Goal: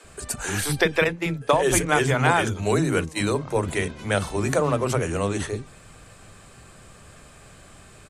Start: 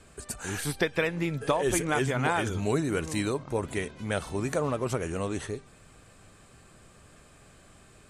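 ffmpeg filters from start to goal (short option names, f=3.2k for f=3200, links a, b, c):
-filter_complex "[0:a]asettb=1/sr,asplit=3[a][b][c];[a]atrim=end=1.044[d];[b]atrim=start=1.04:end=3.38,asetpts=PTS-STARTPTS,afade=t=in:d=0.004:c=qsin,afade=t=out:st=2.336:d=0.004:c=qsin,agate=range=-15dB:threshold=-29dB:ratio=16:detection=peak[e];[c]atrim=start=3.376[f];[d][e]acrossfade=d=0.004:c1=hsin:c2=qsin[g];[g][f]acrossfade=d=0.004:c1=qsin:c2=hsin,acrossover=split=300[h][i];[h]adelay=40[j];[j][i]amix=inputs=2:normalize=0,volume=7.5dB"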